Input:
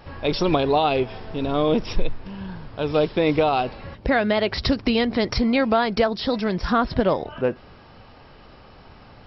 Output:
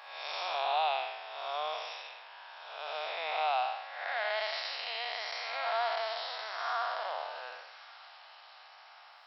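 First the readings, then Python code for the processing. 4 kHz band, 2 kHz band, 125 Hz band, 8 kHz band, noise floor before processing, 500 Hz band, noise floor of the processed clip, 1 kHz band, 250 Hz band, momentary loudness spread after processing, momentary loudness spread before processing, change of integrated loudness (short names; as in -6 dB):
-7.0 dB, -7.5 dB, under -40 dB, n/a, -47 dBFS, -17.0 dB, -55 dBFS, -7.5 dB, under -40 dB, 20 LU, 11 LU, -12.5 dB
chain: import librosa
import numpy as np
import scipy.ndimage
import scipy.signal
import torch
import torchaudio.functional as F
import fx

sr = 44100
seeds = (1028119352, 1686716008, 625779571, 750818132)

p1 = fx.spec_blur(x, sr, span_ms=278.0)
p2 = scipy.signal.sosfilt(scipy.signal.ellip(4, 1.0, 80, 710.0, 'highpass', fs=sr, output='sos'), p1)
p3 = p2 + fx.echo_wet_highpass(p2, sr, ms=1132, feedback_pct=48, hz=2200.0, wet_db=-13.0, dry=0)
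y = p3 * 10.0 ** (-2.0 / 20.0)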